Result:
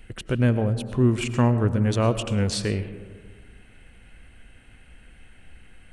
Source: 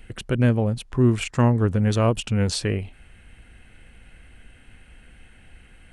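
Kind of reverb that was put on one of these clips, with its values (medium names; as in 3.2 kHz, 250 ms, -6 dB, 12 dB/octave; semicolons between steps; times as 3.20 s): algorithmic reverb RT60 1.6 s, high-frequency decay 0.3×, pre-delay 65 ms, DRR 11.5 dB; trim -1.5 dB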